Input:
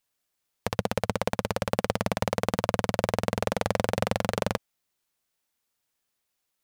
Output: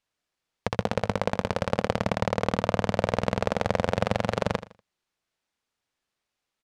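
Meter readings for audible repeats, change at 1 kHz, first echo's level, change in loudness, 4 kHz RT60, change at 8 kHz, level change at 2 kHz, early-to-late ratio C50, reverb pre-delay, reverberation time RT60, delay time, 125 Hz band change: 2, +1.5 dB, -14.0 dB, +1.0 dB, no reverb, -5.5 dB, +1.0 dB, no reverb, no reverb, no reverb, 80 ms, +1.5 dB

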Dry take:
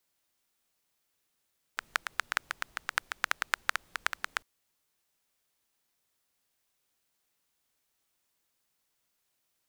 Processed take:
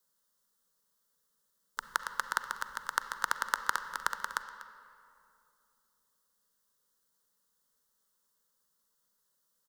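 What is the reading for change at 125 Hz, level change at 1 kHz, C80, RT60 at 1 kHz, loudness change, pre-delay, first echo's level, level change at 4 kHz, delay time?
no reading, +3.0 dB, 10.0 dB, 2.5 s, -0.5 dB, 36 ms, -16.5 dB, -3.5 dB, 244 ms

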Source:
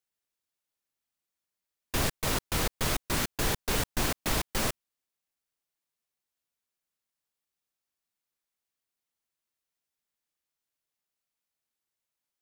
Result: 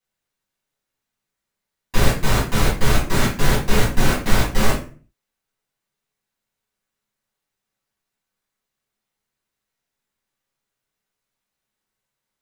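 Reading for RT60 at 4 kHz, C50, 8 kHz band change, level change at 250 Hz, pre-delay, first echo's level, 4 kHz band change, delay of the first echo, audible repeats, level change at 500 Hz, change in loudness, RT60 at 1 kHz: 0.30 s, 5.5 dB, +4.5 dB, +12.0 dB, 5 ms, no echo, +6.5 dB, no echo, no echo, +11.0 dB, +9.0 dB, 0.35 s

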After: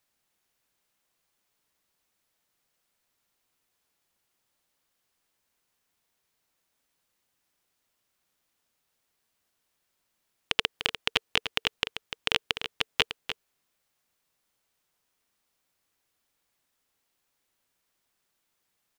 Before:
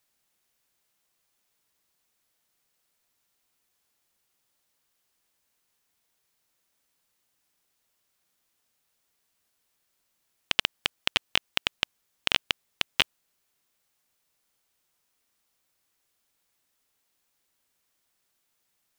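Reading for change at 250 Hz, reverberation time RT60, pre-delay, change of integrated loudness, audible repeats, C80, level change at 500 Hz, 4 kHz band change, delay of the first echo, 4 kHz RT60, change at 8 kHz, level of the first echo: +0.5 dB, no reverb, no reverb, -1.0 dB, 1, no reverb, +3.0 dB, -1.0 dB, 297 ms, no reverb, -2.5 dB, -9.5 dB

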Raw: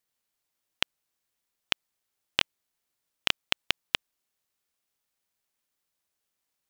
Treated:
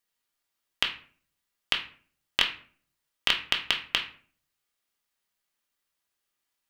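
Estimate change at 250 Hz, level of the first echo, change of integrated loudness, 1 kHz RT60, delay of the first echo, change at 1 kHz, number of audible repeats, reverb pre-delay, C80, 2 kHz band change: -1.0 dB, no echo, +2.5 dB, 0.45 s, no echo, +2.0 dB, no echo, 3 ms, 14.0 dB, +2.5 dB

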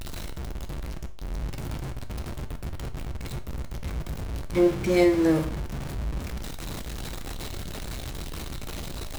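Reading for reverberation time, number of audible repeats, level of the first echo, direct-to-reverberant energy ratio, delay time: 0.45 s, no echo, no echo, 7.0 dB, no echo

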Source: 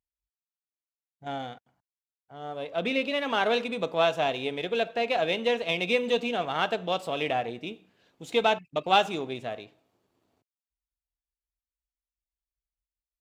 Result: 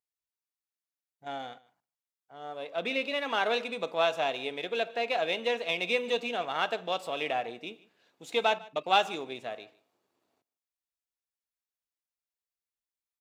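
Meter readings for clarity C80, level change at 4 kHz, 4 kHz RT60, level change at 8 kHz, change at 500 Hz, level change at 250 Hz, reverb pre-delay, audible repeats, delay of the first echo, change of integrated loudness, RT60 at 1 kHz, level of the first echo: no reverb, -2.0 dB, no reverb, -1.5 dB, -3.5 dB, -7.5 dB, no reverb, 1, 149 ms, -3.0 dB, no reverb, -22.0 dB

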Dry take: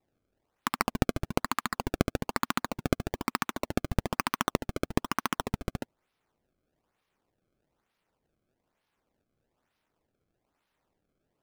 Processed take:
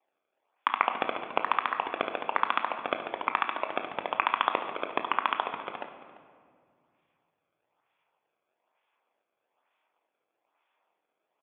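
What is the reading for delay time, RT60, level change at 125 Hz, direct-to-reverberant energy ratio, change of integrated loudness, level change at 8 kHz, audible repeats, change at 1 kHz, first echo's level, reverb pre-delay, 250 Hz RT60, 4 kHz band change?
343 ms, 2.0 s, under -20 dB, 5.5 dB, +2.0 dB, under -35 dB, 1, +6.0 dB, -18.5 dB, 20 ms, 2.7 s, +0.5 dB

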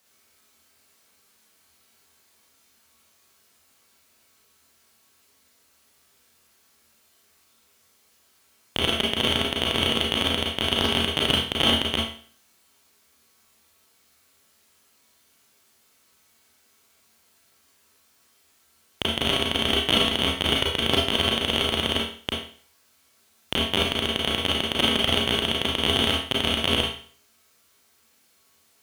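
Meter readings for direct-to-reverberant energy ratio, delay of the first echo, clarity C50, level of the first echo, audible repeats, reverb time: -3.5 dB, no echo, 2.0 dB, no echo, no echo, 0.45 s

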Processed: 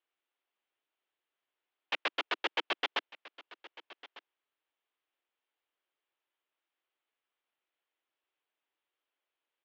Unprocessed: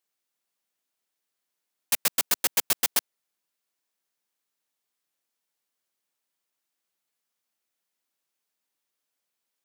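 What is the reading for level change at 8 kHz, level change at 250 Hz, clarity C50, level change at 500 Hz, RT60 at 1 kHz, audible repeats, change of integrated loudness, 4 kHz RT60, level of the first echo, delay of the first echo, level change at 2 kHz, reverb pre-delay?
-33.0 dB, -4.5 dB, no reverb, -0.5 dB, no reverb, 1, -10.0 dB, no reverb, -19.0 dB, 1200 ms, -0.5 dB, no reverb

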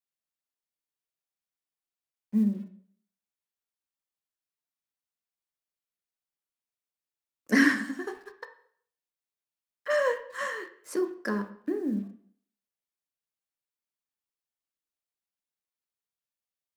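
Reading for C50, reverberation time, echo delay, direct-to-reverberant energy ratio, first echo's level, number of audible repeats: 11.5 dB, 0.60 s, no echo, 7.0 dB, no echo, no echo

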